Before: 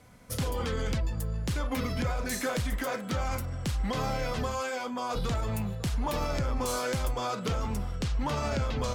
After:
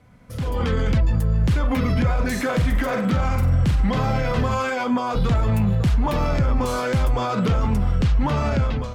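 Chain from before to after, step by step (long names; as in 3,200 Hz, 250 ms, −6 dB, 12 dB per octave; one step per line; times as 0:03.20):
0:02.48–0:04.75: flutter between parallel walls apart 8 metres, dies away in 0.3 s
brickwall limiter −28.5 dBFS, peak gain reduction 8.5 dB
bass and treble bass +13 dB, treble −10 dB
automatic gain control gain up to 15 dB
low-shelf EQ 200 Hz −10.5 dB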